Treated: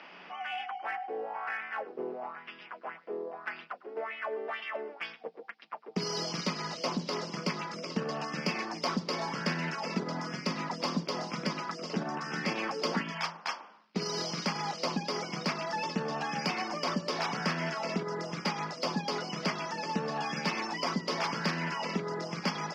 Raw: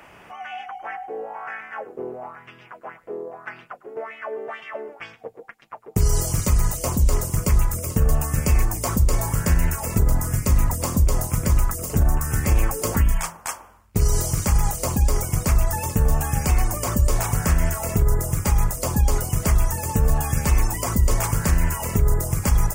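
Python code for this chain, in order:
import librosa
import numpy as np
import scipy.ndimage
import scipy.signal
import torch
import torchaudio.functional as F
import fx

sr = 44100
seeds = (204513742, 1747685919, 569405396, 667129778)

p1 = scipy.signal.sosfilt(scipy.signal.cheby1(5, 1.0, [170.0, 5100.0], 'bandpass', fs=sr, output='sos'), x)
p2 = fx.high_shelf(p1, sr, hz=2600.0, db=11.5)
p3 = np.clip(p2, -10.0 ** (-25.5 / 20.0), 10.0 ** (-25.5 / 20.0))
p4 = p2 + (p3 * 10.0 ** (-10.5 / 20.0))
y = p4 * 10.0 ** (-7.0 / 20.0)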